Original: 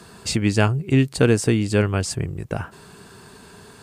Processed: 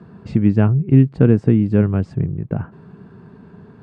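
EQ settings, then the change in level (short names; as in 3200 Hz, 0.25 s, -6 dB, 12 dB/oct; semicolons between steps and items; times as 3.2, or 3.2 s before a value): LPF 1700 Hz 12 dB/oct; bell 170 Hz +14 dB 2.2 oct; -5.5 dB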